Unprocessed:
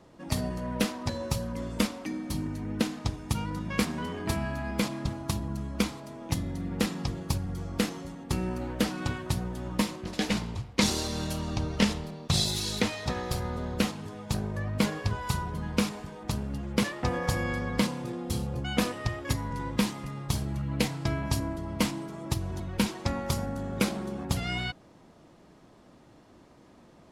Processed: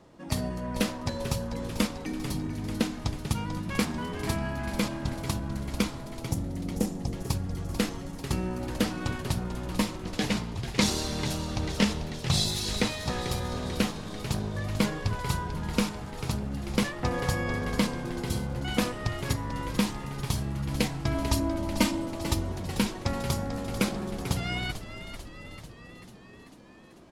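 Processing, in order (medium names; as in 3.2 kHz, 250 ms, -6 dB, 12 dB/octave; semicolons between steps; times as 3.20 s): 6.21–7.14 s: high-order bell 2.2 kHz -13 dB 2.4 oct; 21.14–22.52 s: comb 3.3 ms, depth 100%; frequency-shifting echo 442 ms, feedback 64%, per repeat -77 Hz, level -10.5 dB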